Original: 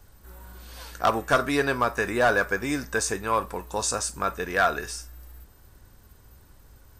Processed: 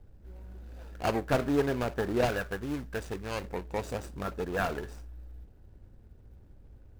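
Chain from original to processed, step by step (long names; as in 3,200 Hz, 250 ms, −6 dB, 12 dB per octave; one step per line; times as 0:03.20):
running median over 41 samples
0:02.26–0:03.44: parametric band 360 Hz −5.5 dB 2.8 octaves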